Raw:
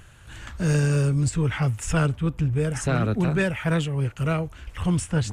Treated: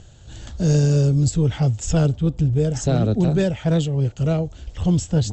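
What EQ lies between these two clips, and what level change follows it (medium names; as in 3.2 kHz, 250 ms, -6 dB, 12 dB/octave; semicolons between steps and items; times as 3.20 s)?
Chebyshev low-pass 7.8 kHz, order 8; high-order bell 1.6 kHz -13.5 dB; +5.5 dB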